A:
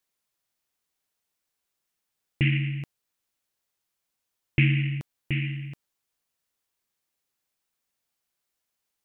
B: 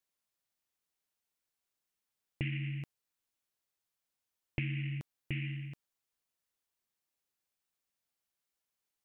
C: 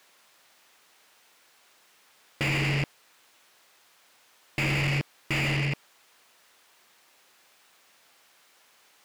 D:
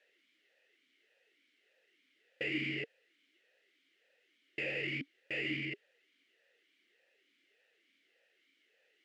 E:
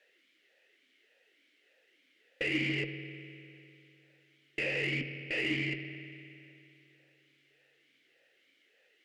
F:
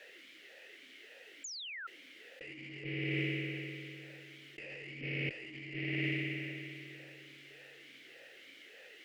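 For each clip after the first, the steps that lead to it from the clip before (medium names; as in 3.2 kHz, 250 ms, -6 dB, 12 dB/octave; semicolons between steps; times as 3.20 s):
compression 6:1, threshold -26 dBFS, peak gain reduction 9.5 dB; trim -6.5 dB
overdrive pedal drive 41 dB, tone 2.5 kHz, clips at -18 dBFS
talking filter e-i 1.7 Hz; trim +2 dB
spring tank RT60 2.8 s, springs 50 ms, chirp 40 ms, DRR 8 dB; Chebyshev shaper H 6 -28 dB, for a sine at -24.5 dBFS; trim +4 dB
painted sound fall, 1.44–1.87 s, 1.3–7.3 kHz -36 dBFS; compressor with a negative ratio -47 dBFS, ratio -1; trim +5.5 dB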